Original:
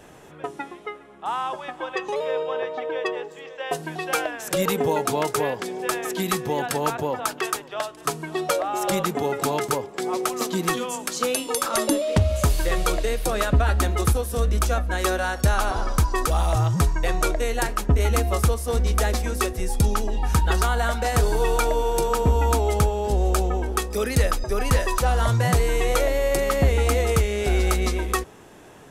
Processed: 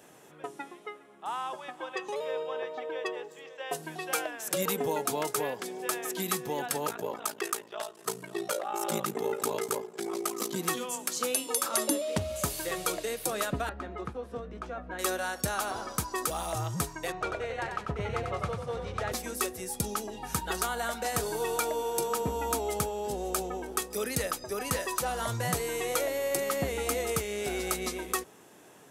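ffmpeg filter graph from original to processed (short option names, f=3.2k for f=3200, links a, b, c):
-filter_complex "[0:a]asettb=1/sr,asplit=3[a][b][c];[a]atrim=end=6.864[d];[b]atrim=start=6.86:end=10.56,asetpts=PTS-STARTPTS,afade=t=in:d=0.004:c=qsin,afade=t=out:st=3.696:d=0.004:c=qsin,equalizer=f=420:t=o:w=0.35:g=3,aecho=1:1:4.9:0.53,atrim=end_sample=163170,aeval=exprs='val(0)*sin(2*PI*28*n/s)':c=same[e];[c]atrim=start=10.556[f];[d][e]acrossfade=d=0.004:c1=hsin:c2=qsin[g];[g][f]acrossfade=d=0.004:c1=qsin:c2=hsin,asettb=1/sr,asplit=3[h][i][j];[h]atrim=end=13.694[k];[i]atrim=start=13.69:end=14.99,asetpts=PTS-STARTPTS,afade=t=in:d=0.004:c=qsin,afade=t=out:st=1.296:d=0.004:c=qsin,lowpass=1.9k,acompressor=threshold=-22dB:ratio=5:attack=3.2:release=140:knee=1:detection=peak,asplit=2[l][m];[m]adelay=16,volume=-13dB[n];[l][n]amix=inputs=2:normalize=0,atrim=end_sample=57330[o];[j]atrim=start=14.986[p];[k][o]acrossfade=d=0.004:c1=hsin:c2=qsin[q];[q][p]acrossfade=d=0.004:c1=qsin:c2=hsin,asettb=1/sr,asplit=3[r][s][t];[r]atrim=end=17.124[u];[s]atrim=start=17.12:end=19.12,asetpts=PTS-STARTPTS,afade=t=in:d=0.004:c=qsin,afade=t=out:st=1.996:d=0.004:c=qsin,lowpass=2.6k,equalizer=f=260:w=2.5:g=-11.5,asplit=5[v][w][x][y][z];[w]adelay=93,afreqshift=33,volume=-5.5dB[aa];[x]adelay=186,afreqshift=66,volume=-14.9dB[ab];[y]adelay=279,afreqshift=99,volume=-24.2dB[ac];[z]adelay=372,afreqshift=132,volume=-33.6dB[ad];[v][aa][ab][ac][ad]amix=inputs=5:normalize=0,atrim=end_sample=88200[ae];[t]atrim=start=19.116[af];[u][ae]acrossfade=d=0.004:c1=hsin:c2=qsin[ag];[ag][af]acrossfade=d=0.004:c1=qsin:c2=hsin,highpass=150,highshelf=f=6.7k:g=9.5,volume=-8dB"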